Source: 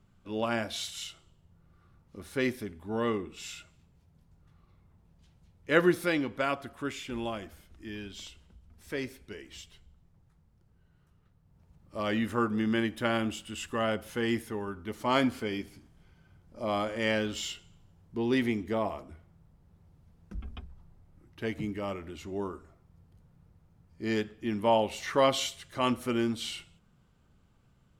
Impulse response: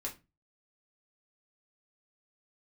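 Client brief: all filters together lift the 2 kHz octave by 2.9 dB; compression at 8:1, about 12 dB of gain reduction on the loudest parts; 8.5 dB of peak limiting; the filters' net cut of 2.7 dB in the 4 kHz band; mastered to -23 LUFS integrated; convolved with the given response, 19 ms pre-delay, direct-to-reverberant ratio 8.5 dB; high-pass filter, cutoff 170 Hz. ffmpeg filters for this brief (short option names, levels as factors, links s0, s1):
-filter_complex "[0:a]highpass=170,equalizer=f=2000:t=o:g=5,equalizer=f=4000:t=o:g=-6.5,acompressor=threshold=0.0316:ratio=8,alimiter=level_in=1.12:limit=0.0631:level=0:latency=1,volume=0.891,asplit=2[s0][s1];[1:a]atrim=start_sample=2205,adelay=19[s2];[s1][s2]afir=irnorm=-1:irlink=0,volume=0.376[s3];[s0][s3]amix=inputs=2:normalize=0,volume=5.62"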